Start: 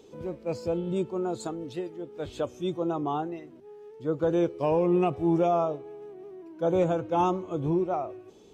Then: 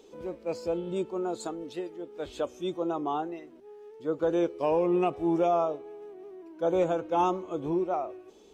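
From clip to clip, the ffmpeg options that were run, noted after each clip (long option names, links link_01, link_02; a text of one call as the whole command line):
ffmpeg -i in.wav -af "equalizer=frequency=120:width_type=o:width=1.1:gain=-14.5" out.wav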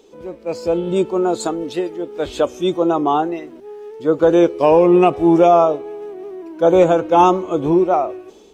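ffmpeg -i in.wav -af "dynaudnorm=framelen=250:gausssize=5:maxgain=9dB,volume=5dB" out.wav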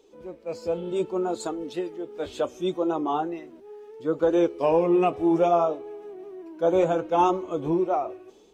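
ffmpeg -i in.wav -af "flanger=delay=1.9:depth=8.7:regen=-46:speed=0.68:shape=triangular,volume=-5.5dB" out.wav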